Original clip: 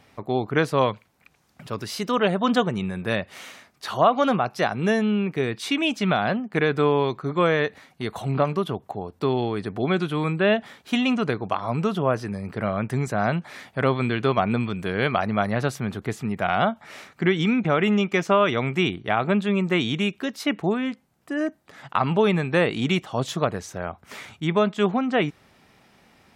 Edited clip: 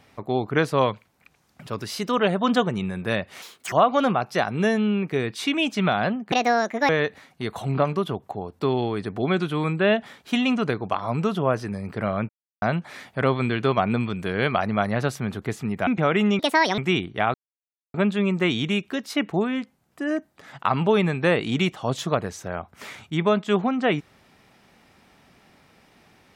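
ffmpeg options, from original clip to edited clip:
ffmpeg -i in.wav -filter_complex "[0:a]asplit=11[link_01][link_02][link_03][link_04][link_05][link_06][link_07][link_08][link_09][link_10][link_11];[link_01]atrim=end=3.424[link_12];[link_02]atrim=start=3.42:end=3.96,asetpts=PTS-STARTPTS,asetrate=79380,aresample=44100[link_13];[link_03]atrim=start=3.956:end=6.564[link_14];[link_04]atrim=start=6.56:end=7.49,asetpts=PTS-STARTPTS,asetrate=71883,aresample=44100,atrim=end_sample=25161,asetpts=PTS-STARTPTS[link_15];[link_05]atrim=start=7.486:end=12.89,asetpts=PTS-STARTPTS,afade=type=out:start_time=5.4:duration=0.004:curve=hsin[link_16];[link_06]atrim=start=12.89:end=13.22,asetpts=PTS-STARTPTS,volume=0[link_17];[link_07]atrim=start=13.22:end=16.472,asetpts=PTS-STARTPTS,afade=type=in:duration=0.004:curve=hsin[link_18];[link_08]atrim=start=17.538:end=18.064[link_19];[link_09]atrim=start=18.06:end=18.68,asetpts=PTS-STARTPTS,asetrate=70119,aresample=44100,atrim=end_sample=17196,asetpts=PTS-STARTPTS[link_20];[link_10]atrim=start=18.676:end=19.24,asetpts=PTS-STARTPTS,afade=type=out:start_time=0.56:duration=0.004:curve=hsin,apad=pad_dur=0.6[link_21];[link_11]atrim=start=19.24,asetpts=PTS-STARTPTS,afade=type=in:duration=0.004:curve=hsin[link_22];[link_12][link_13]acrossfade=duration=0.004:curve1=hsin:curve2=hsin[link_23];[link_23][link_14]acrossfade=duration=0.004:curve1=hsin:curve2=hsin[link_24];[link_24][link_15]acrossfade=duration=0.004:curve1=hsin:curve2=hsin[link_25];[link_16][link_17][link_18]concat=n=3:v=0:a=1[link_26];[link_25][link_26]acrossfade=duration=0.004:curve1=hsin:curve2=hsin[link_27];[link_27][link_19]acrossfade=duration=0.004:curve1=hsin:curve2=hsin[link_28];[link_28][link_20]acrossfade=duration=0.004:curve1=hsin:curve2=hsin[link_29];[link_21][link_22]concat=n=2:v=0:a=1[link_30];[link_29][link_30]acrossfade=duration=0.004:curve1=hsin:curve2=hsin" out.wav

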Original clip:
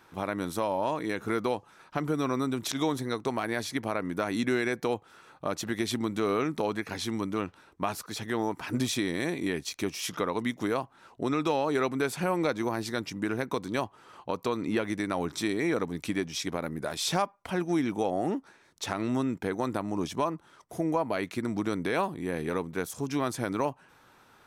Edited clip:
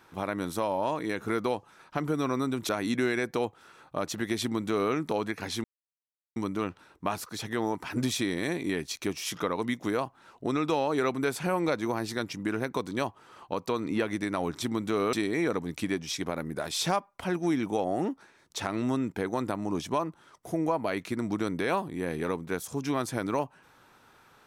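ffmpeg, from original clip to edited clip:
ffmpeg -i in.wav -filter_complex "[0:a]asplit=5[link_01][link_02][link_03][link_04][link_05];[link_01]atrim=end=2.692[link_06];[link_02]atrim=start=4.178:end=7.13,asetpts=PTS-STARTPTS,afade=type=out:start_time=2.948:duration=0.004:curve=hsin,apad=pad_dur=0.72[link_07];[link_03]atrim=start=7.13:end=15.392,asetpts=PTS-STARTPTS,afade=type=in:duration=0.004:curve=hsin[link_08];[link_04]atrim=start=5.908:end=6.422[link_09];[link_05]atrim=start=15.388[link_10];[link_07][link_08]concat=n=2:v=0:a=1[link_11];[link_06][link_11]acrossfade=duration=0.004:curve1=hsin:curve2=hsin[link_12];[link_12][link_09]acrossfade=duration=0.004:curve1=hsin:curve2=hsin[link_13];[link_13][link_10]acrossfade=duration=0.004:curve1=hsin:curve2=hsin" out.wav

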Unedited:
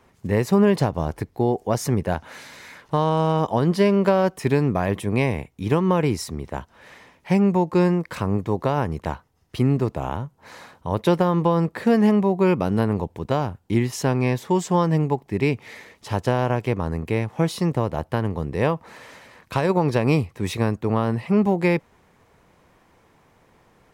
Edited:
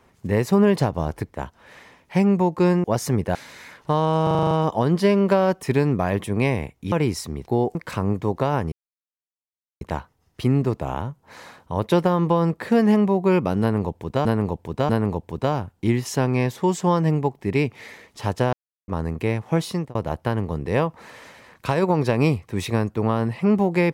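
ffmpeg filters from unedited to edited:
ffmpeg -i in.wav -filter_complex "[0:a]asplit=20[link_01][link_02][link_03][link_04][link_05][link_06][link_07][link_08][link_09][link_10][link_11][link_12][link_13][link_14][link_15][link_16][link_17][link_18][link_19][link_20];[link_01]atrim=end=1.342[link_21];[link_02]atrim=start=6.488:end=7.992[link_22];[link_03]atrim=start=1.628:end=2.142[link_23];[link_04]atrim=start=2.388:end=3.312[link_24];[link_05]atrim=start=3.268:end=3.312[link_25];[link_06]atrim=start=3.268:end=3.312[link_26];[link_07]atrim=start=3.268:end=3.312[link_27];[link_08]atrim=start=3.268:end=3.312[link_28];[link_09]atrim=start=3.268:end=3.312[link_29];[link_10]atrim=start=3.268:end=3.312[link_30];[link_11]atrim=start=3.268:end=5.682[link_31];[link_12]atrim=start=5.948:end=6.492[link_32];[link_13]atrim=start=1.338:end=1.632[link_33];[link_14]atrim=start=7.988:end=8.96,asetpts=PTS-STARTPTS,afade=type=out:start_time=0.968:duration=0.004:curve=hsin,apad=pad_dur=1.09[link_34];[link_15]atrim=start=8.96:end=13.402,asetpts=PTS-STARTPTS,afade=type=in:duration=0.004:curve=hsin[link_35];[link_16]atrim=start=12.758:end=13.402[link_36];[link_17]atrim=start=12.758:end=16.4,asetpts=PTS-STARTPTS,afade=type=out:start_time=3.638:duration=0.004:curve=hsin[link_37];[link_18]atrim=start=16.4:end=16.75,asetpts=PTS-STARTPTS,volume=0[link_38];[link_19]atrim=start=16.75:end=17.82,asetpts=PTS-STARTPTS,afade=type=in:duration=0.004:curve=hsin,afade=type=out:start_time=0.7:duration=0.37:curve=qsin[link_39];[link_20]atrim=start=17.82,asetpts=PTS-STARTPTS,afade=type=in:duration=0.004:curve=hsin[link_40];[link_21][link_22]acrossfade=duration=0.004:curve1=hsin:curve2=hsin[link_41];[link_41][link_23]acrossfade=duration=0.004:curve1=hsin:curve2=hsin[link_42];[link_42][link_24]acrossfade=duration=0.004:curve1=hsin:curve2=hsin[link_43];[link_43][link_25]acrossfade=duration=0.004:curve1=hsin:curve2=hsin[link_44];[link_44][link_26]acrossfade=duration=0.004:curve1=hsin:curve2=hsin[link_45];[link_45][link_27]acrossfade=duration=0.004:curve1=hsin:curve2=hsin[link_46];[link_46][link_28]acrossfade=duration=0.004:curve1=hsin:curve2=hsin[link_47];[link_47][link_29]acrossfade=duration=0.004:curve1=hsin:curve2=hsin[link_48];[link_48][link_30]acrossfade=duration=0.004:curve1=hsin:curve2=hsin[link_49];[link_49][link_31]acrossfade=duration=0.004:curve1=hsin:curve2=hsin[link_50];[link_50][link_32]acrossfade=duration=0.004:curve1=hsin:curve2=hsin[link_51];[link_51][link_33]acrossfade=duration=0.004:curve1=hsin:curve2=hsin[link_52];[link_34][link_35]concat=n=2:v=0:a=1[link_53];[link_52][link_53]acrossfade=duration=0.004:curve1=hsin:curve2=hsin[link_54];[link_54][link_36]acrossfade=duration=0.004:curve1=hsin:curve2=hsin[link_55];[link_37][link_38][link_39][link_40]concat=n=4:v=0:a=1[link_56];[link_55][link_56]acrossfade=duration=0.004:curve1=hsin:curve2=hsin" out.wav

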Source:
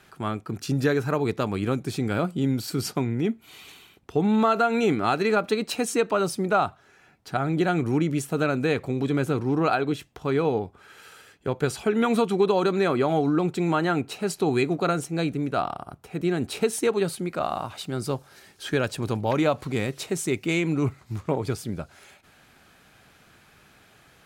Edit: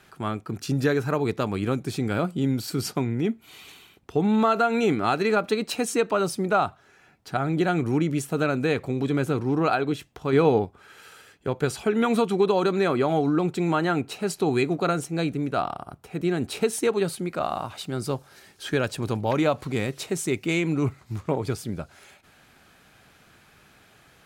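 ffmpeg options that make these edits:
ffmpeg -i in.wav -filter_complex "[0:a]asplit=3[link_01][link_02][link_03];[link_01]atrim=end=10.332[link_04];[link_02]atrim=start=10.328:end=10.652,asetpts=PTS-STARTPTS,volume=4.5dB[link_05];[link_03]atrim=start=10.648[link_06];[link_04][link_05]acrossfade=duration=0.004:curve1=hsin:curve2=hsin[link_07];[link_07][link_06]acrossfade=duration=0.004:curve1=hsin:curve2=hsin" out.wav

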